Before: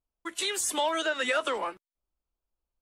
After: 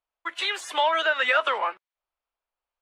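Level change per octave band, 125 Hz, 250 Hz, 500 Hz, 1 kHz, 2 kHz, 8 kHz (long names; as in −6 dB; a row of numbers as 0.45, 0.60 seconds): can't be measured, −8.5 dB, +2.5 dB, +7.0 dB, +7.5 dB, −11.0 dB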